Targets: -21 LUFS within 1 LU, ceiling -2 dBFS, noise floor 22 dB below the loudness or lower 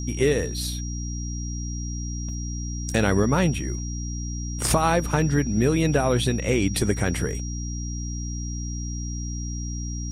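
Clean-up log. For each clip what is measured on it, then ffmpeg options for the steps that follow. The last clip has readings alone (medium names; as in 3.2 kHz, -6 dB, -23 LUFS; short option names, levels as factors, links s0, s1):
hum 60 Hz; highest harmonic 300 Hz; hum level -28 dBFS; steady tone 5.7 kHz; tone level -37 dBFS; loudness -25.5 LUFS; peak level -9.0 dBFS; loudness target -21.0 LUFS
-> -af "bandreject=f=60:t=h:w=6,bandreject=f=120:t=h:w=6,bandreject=f=180:t=h:w=6,bandreject=f=240:t=h:w=6,bandreject=f=300:t=h:w=6"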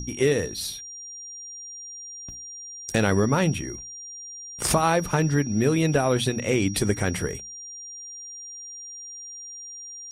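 hum not found; steady tone 5.7 kHz; tone level -37 dBFS
-> -af "bandreject=f=5700:w=30"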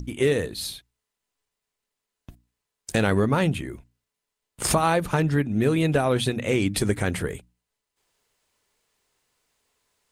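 steady tone not found; loudness -24.0 LUFS; peak level -9.0 dBFS; loudness target -21.0 LUFS
-> -af "volume=1.41"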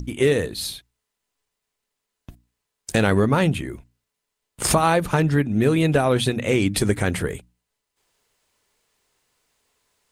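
loudness -21.0 LUFS; peak level -6.0 dBFS; noise floor -82 dBFS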